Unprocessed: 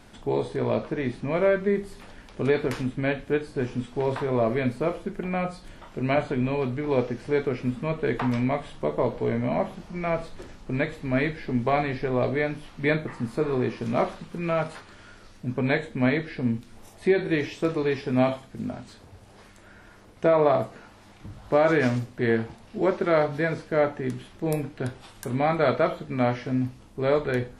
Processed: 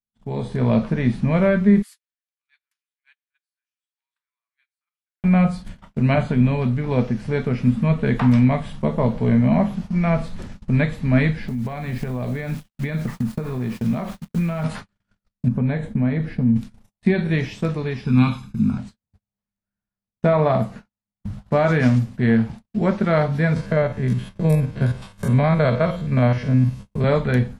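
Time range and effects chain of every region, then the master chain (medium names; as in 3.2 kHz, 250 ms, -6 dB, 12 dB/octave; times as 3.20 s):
1.82–5.24 s: Bessel high-pass 2 kHz, order 8 + treble shelf 9.3 kHz +12 dB + compression 2.5:1, threshold -48 dBFS
11.48–14.64 s: gate -35 dBFS, range -6 dB + word length cut 8-bit, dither none + compression 16:1, threshold -31 dBFS
15.48–16.56 s: peaking EQ 4.2 kHz -10 dB 2.9 oct + compression 2:1, threshold -31 dBFS
18.05–18.78 s: dynamic bell 4 kHz, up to +7 dB, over -47 dBFS, Q 0.98 + comb 0.8 ms, depth 90%
23.56–27.04 s: spectrogram pixelated in time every 50 ms + comb 1.9 ms, depth 39% + three bands compressed up and down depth 40%
whole clip: gate -42 dBFS, range -51 dB; resonant low shelf 260 Hz +6.5 dB, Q 3; level rider; trim -4.5 dB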